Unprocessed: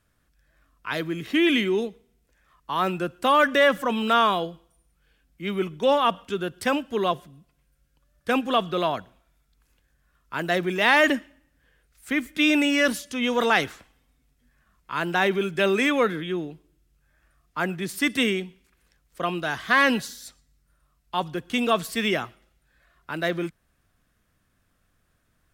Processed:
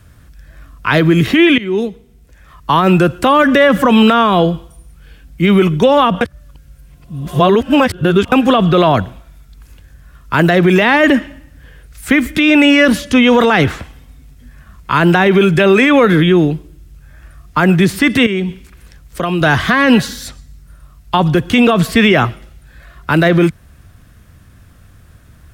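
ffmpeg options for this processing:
ffmpeg -i in.wav -filter_complex "[0:a]asettb=1/sr,asplit=3[link_01][link_02][link_03];[link_01]atrim=end=18.264[link_04];[link_02]atrim=start=18.26:end=19.41,asetpts=PTS-STARTPTS,afade=type=in:duration=0.004:curve=qsin,afade=type=out:start_time=1.146:duration=0.004:curve=qsin,acompressor=threshold=-37dB:ratio=3:attack=3.2:release=140:knee=1:detection=peak[link_05];[link_03]atrim=start=19.406[link_06];[link_04][link_05]acrossfade=duration=0.004:curve1=hsin:curve2=qsin[link_07];[link_07][link_06]acrossfade=duration=0.004:curve1=qsin:curve2=hsin,asplit=4[link_08][link_09][link_10][link_11];[link_08]atrim=end=1.58,asetpts=PTS-STARTPTS,afade=type=out:start_time=1.576:duration=0.004:curve=hsin:silence=0.0891251[link_12];[link_09]atrim=start=1.58:end=6.212,asetpts=PTS-STARTPTS,afade=type=in:duration=1.18:silence=0.0891251[link_13];[link_10]atrim=start=6.208:end=8.322,asetpts=PTS-STARTPTS,areverse[link_14];[link_11]atrim=start=8.318[link_15];[link_12][link_13]concat=n=2:v=0:a=1[link_16];[link_16][link_14]acrossfade=duration=0.004:curve1=hsin:curve2=hsin[link_17];[link_17][link_15]acrossfade=duration=0.004:curve1=hsin:curve2=hsin,acrossover=split=410|3500[link_18][link_19][link_20];[link_18]acompressor=threshold=-30dB:ratio=4[link_21];[link_19]acompressor=threshold=-23dB:ratio=4[link_22];[link_20]acompressor=threshold=-49dB:ratio=4[link_23];[link_21][link_22][link_23]amix=inputs=3:normalize=0,equalizer=frequency=82:width_type=o:width=2.2:gain=12,alimiter=level_in=20dB:limit=-1dB:release=50:level=0:latency=1,volume=-1dB" out.wav

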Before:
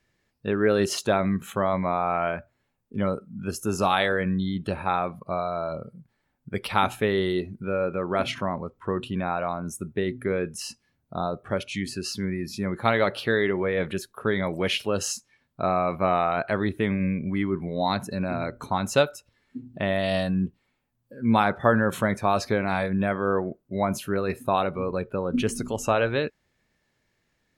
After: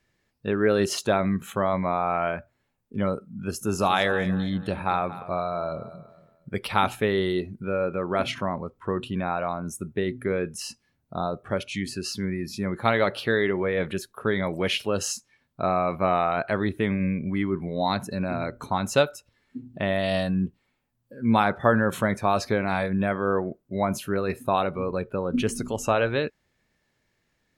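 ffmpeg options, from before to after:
ffmpeg -i in.wav -filter_complex "[0:a]asettb=1/sr,asplit=3[link_01][link_02][link_03];[link_01]atrim=end=3.384[link_04];[link_02]atrim=start=3.38:end=6.95,asetpts=PTS-STARTPTS,afade=type=in:duration=0.004:curve=qsin,afade=type=out:start_time=3.566:duration=0.004:curve=qsin,aecho=1:1:232|464|696:0.178|0.0587|0.0194,atrim=end_sample=157437[link_05];[link_03]atrim=start=6.946[link_06];[link_04][link_05]acrossfade=duration=0.004:curve1=hsin:curve2=qsin[link_07];[link_07][link_06]acrossfade=duration=0.004:curve1=qsin:curve2=hsin" out.wav

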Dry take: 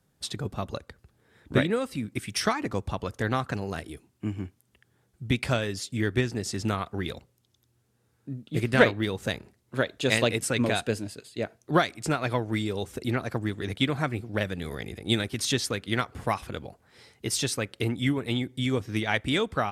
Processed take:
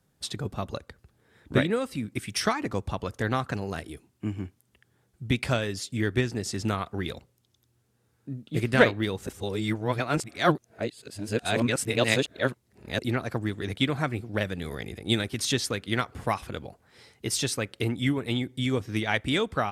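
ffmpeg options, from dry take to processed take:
ffmpeg -i in.wav -filter_complex "[0:a]asplit=3[link_01][link_02][link_03];[link_01]atrim=end=9.272[link_04];[link_02]atrim=start=9.268:end=12.992,asetpts=PTS-STARTPTS,areverse[link_05];[link_03]atrim=start=12.988[link_06];[link_04][link_05]acrossfade=duration=0.004:curve1=hsin:curve2=hsin[link_07];[link_07][link_06]acrossfade=duration=0.004:curve1=hsin:curve2=hsin" out.wav

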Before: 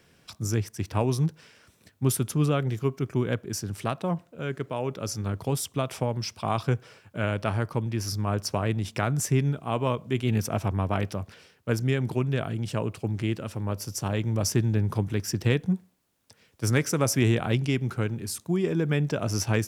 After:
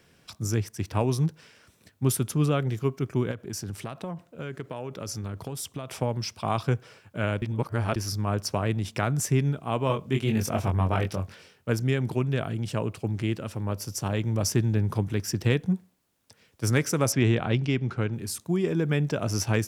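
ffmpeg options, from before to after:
ffmpeg -i in.wav -filter_complex "[0:a]asettb=1/sr,asplit=3[link_01][link_02][link_03];[link_01]atrim=end=3.314[link_04];[link_02]atrim=start=3.31:end=6.02,asetpts=PTS-STARTPTS,afade=type=in:duration=0.004:curve=qsin,afade=type=out:start_time=2.706:duration=0.004:curve=qsin,acompressor=threshold=-29dB:ratio=10:attack=3.2:release=140:knee=1:detection=peak[link_05];[link_03]atrim=start=6.016[link_06];[link_04][link_05]acrossfade=duration=0.004:curve1=hsin:curve2=qsin[link_07];[link_07][link_06]acrossfade=duration=0.004:curve1=qsin:curve2=hsin,asettb=1/sr,asplit=3[link_08][link_09][link_10];[link_08]atrim=end=9.874[link_11];[link_09]atrim=start=9.87:end=11.7,asetpts=PTS-STARTPTS,afade=type=in:duration=0.004:curve=qsin,afade=type=out:start_time=1.826:duration=0.004:curve=qsin,asplit=2[link_12][link_13];[link_13]adelay=22,volume=-4dB[link_14];[link_12][link_14]amix=inputs=2:normalize=0,atrim=end_sample=80703[link_15];[link_10]atrim=start=11.696[link_16];[link_11][link_15]acrossfade=duration=0.004:curve1=hsin:curve2=qsin[link_17];[link_17][link_16]acrossfade=duration=0.004:curve1=qsin:curve2=hsin,asettb=1/sr,asplit=3[link_18][link_19][link_20];[link_18]atrim=end=17.124[link_21];[link_19]atrim=start=17.12:end=18.13,asetpts=PTS-STARTPTS,afade=type=in:duration=0.004:curve=qsin,afade=type=out:start_time=1.006:duration=0.004:curve=qsin,lowpass=4900[link_22];[link_20]atrim=start=18.126[link_23];[link_21][link_22]acrossfade=duration=0.004:curve1=hsin:curve2=qsin[link_24];[link_24][link_23]acrossfade=duration=0.004:curve1=qsin:curve2=hsin,asplit=3[link_25][link_26][link_27];[link_25]atrim=end=7.422[link_28];[link_26]atrim=start=7.418:end=7.962,asetpts=PTS-STARTPTS,areverse[link_29];[link_27]atrim=start=7.958[link_30];[link_28][link_29]acrossfade=duration=0.004:curve1=hsin:curve2=hsin[link_31];[link_31][link_30]acrossfade=duration=0.004:curve1=hsin:curve2=hsin" out.wav

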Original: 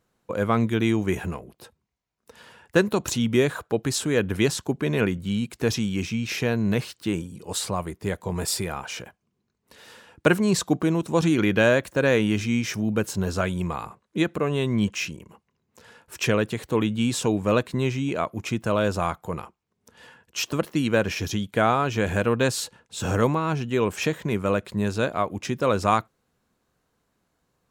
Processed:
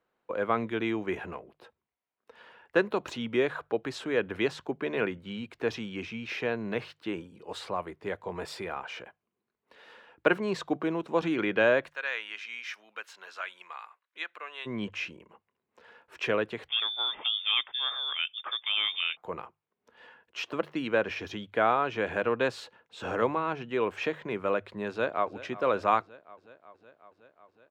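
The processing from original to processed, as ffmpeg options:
ffmpeg -i in.wav -filter_complex "[0:a]asplit=3[link_01][link_02][link_03];[link_01]afade=type=out:start_time=11.89:duration=0.02[link_04];[link_02]highpass=1500,afade=type=in:start_time=11.89:duration=0.02,afade=type=out:start_time=14.65:duration=0.02[link_05];[link_03]afade=type=in:start_time=14.65:duration=0.02[link_06];[link_04][link_05][link_06]amix=inputs=3:normalize=0,asettb=1/sr,asplit=3[link_07][link_08][link_09];[link_07]atrim=end=16.684[link_10];[link_08]atrim=start=16.68:end=19.17,asetpts=PTS-STARTPTS,afade=type=in:duration=0.004:curve=qsin,afade=type=out:start_time=2.486:duration=0.004:curve=qsin,lowpass=frequency=3100:width_type=q:width=0.5098,lowpass=frequency=3100:width_type=q:width=0.6013,lowpass=frequency=3100:width_type=q:width=0.9,lowpass=frequency=3100:width_type=q:width=2.563,afreqshift=-3700[link_11];[link_09]atrim=start=19.166[link_12];[link_10][link_11]acrossfade=duration=0.004:curve1=hsin:curve2=qsin[link_13];[link_13][link_12]acrossfade=duration=0.004:curve1=qsin:curve2=hsin,asplit=2[link_14][link_15];[link_15]afade=type=in:start_time=24.89:duration=0.01,afade=type=out:start_time=25.35:duration=0.01,aecho=0:1:370|740|1110|1480|1850|2220|2590|2960|3330|3700:0.141254|0.10594|0.0794552|0.0595914|0.0446936|0.0335202|0.0251401|0.0188551|0.0141413|0.010606[link_16];[link_14][link_16]amix=inputs=2:normalize=0,acrossover=split=310 3600:gain=0.2 1 0.0708[link_17][link_18][link_19];[link_17][link_18][link_19]amix=inputs=3:normalize=0,bandreject=frequency=50:width_type=h:width=6,bandreject=frequency=100:width_type=h:width=6,bandreject=frequency=150:width_type=h:width=6,volume=-3dB" out.wav

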